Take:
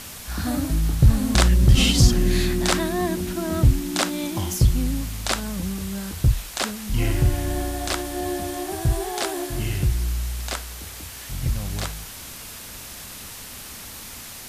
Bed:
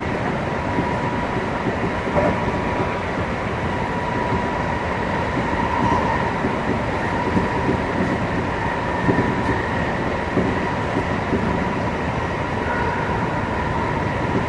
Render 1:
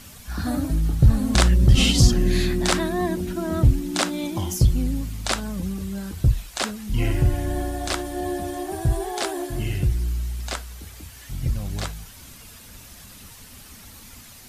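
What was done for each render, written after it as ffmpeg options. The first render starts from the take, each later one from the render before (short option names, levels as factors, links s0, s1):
-af "afftdn=nr=9:nf=-38"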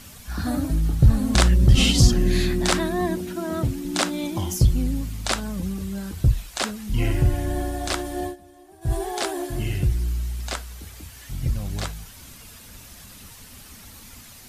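-filter_complex "[0:a]asettb=1/sr,asplit=3[s0][s1][s2];[s0]atrim=end=3.184[s3];[s1]atrim=start=3.18:end=3.85,asetpts=PTS-STARTPTS,afade=t=in:d=0.004:c=qsin,afade=t=out:st=0.666:d=0.004:c=qsin,highpass=f=230:p=1[s4];[s2]atrim=start=3.846[s5];[s3][s4]acrossfade=d=0.004:c1=hsin:c2=qsin[s6];[s6][s5]acrossfade=d=0.004:c1=qsin:c2=hsin,asplit=3[s7][s8][s9];[s7]atrim=end=8.36,asetpts=PTS-STARTPTS,afade=t=out:st=8.24:d=0.12:silence=0.105925[s10];[s8]atrim=start=8.36:end=8.81,asetpts=PTS-STARTPTS,volume=0.106[s11];[s9]atrim=start=8.81,asetpts=PTS-STARTPTS,afade=t=in:d=0.12:silence=0.105925[s12];[s10][s11][s12]concat=n=3:v=0:a=1"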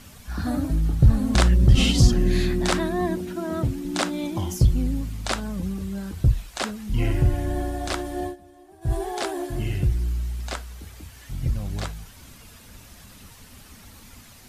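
-af "lowpass=f=2000:p=1,aemphasis=mode=production:type=cd"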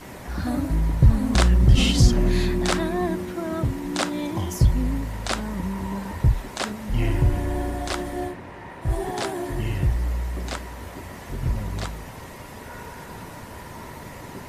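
-filter_complex "[1:a]volume=0.133[s0];[0:a][s0]amix=inputs=2:normalize=0"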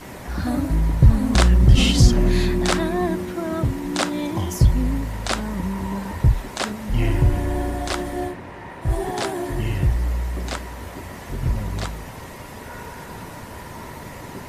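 -af "volume=1.33"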